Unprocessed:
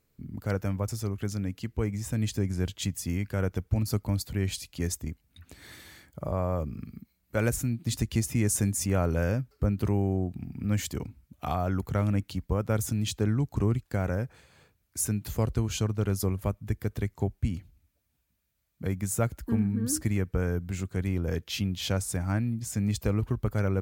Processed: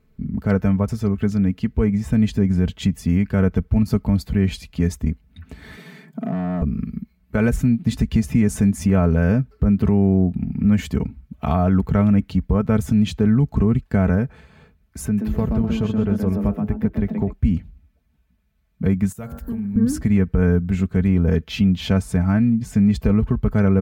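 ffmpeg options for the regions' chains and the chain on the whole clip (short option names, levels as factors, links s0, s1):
-filter_complex "[0:a]asettb=1/sr,asplit=3[s0][s1][s2];[s0]atrim=end=5.774[s3];[s1]atrim=start=5.77:end=6.62,asetpts=PTS-STARTPTS,afade=t=in:d=0.004:c=qsin,afade=t=out:st=0.846:d=0.004:c=qsin,acompressor=threshold=0.0112:ratio=1.5:attack=3.2:release=140:knee=1:detection=peak,asoftclip=type=hard:threshold=0.0237,afreqshift=87[s4];[s2]atrim=start=6.616[s5];[s3][s4]acrossfade=d=0.004:c1=hsin:c2=qsin[s6];[s6][s5]acrossfade=d=0.004:c1=qsin:c2=hsin,asettb=1/sr,asplit=3[s7][s8][s9];[s7]atrim=end=15.054[s10];[s8]atrim=start=15.05:end=17.33,asetpts=PTS-STARTPTS,afade=t=in:d=0.004:c=qsin,afade=t=out:st=2.276:d=0.004:c=qsin,equalizer=f=7700:w=0.48:g=-9.5,acompressor=threshold=0.0178:ratio=1.5:attack=3.2:release=140:knee=1:detection=peak,asplit=5[s11][s12][s13][s14][s15];[s12]adelay=126,afreqshift=110,volume=0.501[s16];[s13]adelay=252,afreqshift=220,volume=0.17[s17];[s14]adelay=378,afreqshift=330,volume=0.0582[s18];[s15]adelay=504,afreqshift=440,volume=0.0197[s19];[s11][s16][s17][s18][s19]amix=inputs=5:normalize=0,atrim=end_sample=100548[s20];[s9]atrim=start=17.326[s21];[s10][s20]acrossfade=d=0.004:c1=hsin:c2=qsin[s22];[s22][s21]acrossfade=d=0.004:c1=qsin:c2=hsin,asettb=1/sr,asplit=3[s23][s24][s25];[s23]atrim=end=19.124[s26];[s24]atrim=start=19.12:end=19.76,asetpts=PTS-STARTPTS,afade=t=in:d=0.004:c=qsin,afade=t=out:st=0.636:d=0.004:c=qsin,aemphasis=mode=production:type=75fm,bandreject=f=47.3:t=h:w=4,bandreject=f=94.6:t=h:w=4,bandreject=f=141.9:t=h:w=4,bandreject=f=189.2:t=h:w=4,bandreject=f=236.5:t=h:w=4,bandreject=f=283.8:t=h:w=4,bandreject=f=331.1:t=h:w=4,bandreject=f=378.4:t=h:w=4,bandreject=f=425.7:t=h:w=4,bandreject=f=473:t=h:w=4,bandreject=f=520.3:t=h:w=4,bandreject=f=567.6:t=h:w=4,bandreject=f=614.9:t=h:w=4,bandreject=f=662.2:t=h:w=4,bandreject=f=709.5:t=h:w=4,bandreject=f=756.8:t=h:w=4,bandreject=f=804.1:t=h:w=4,bandreject=f=851.4:t=h:w=4,bandreject=f=898.7:t=h:w=4,bandreject=f=946:t=h:w=4,bandreject=f=993.3:t=h:w=4,bandreject=f=1040.6:t=h:w=4,bandreject=f=1087.9:t=h:w=4,bandreject=f=1135.2:t=h:w=4,bandreject=f=1182.5:t=h:w=4,bandreject=f=1229.8:t=h:w=4,bandreject=f=1277.1:t=h:w=4,bandreject=f=1324.4:t=h:w=4,bandreject=f=1371.7:t=h:w=4,bandreject=f=1419:t=h:w=4,bandreject=f=1466.3:t=h:w=4,bandreject=f=1513.6:t=h:w=4,bandreject=f=1560.9:t=h:w=4,bandreject=f=1608.2:t=h:w=4,bandreject=f=1655.5:t=h:w=4,bandreject=f=1702.8:t=h:w=4,bandreject=f=1750.1:t=h:w=4,bandreject=f=1797.4:t=h:w=4,acompressor=threshold=0.0141:ratio=8:attack=3.2:release=140:knee=1:detection=peak[s27];[s25]atrim=start=19.756[s28];[s26][s27]acrossfade=d=0.004:c1=hsin:c2=qsin[s29];[s29][s28]acrossfade=d=0.004:c1=qsin:c2=hsin,bass=f=250:g=8,treble=f=4000:g=-14,aecho=1:1:4.6:0.6,alimiter=level_in=5.31:limit=0.891:release=50:level=0:latency=1,volume=0.422"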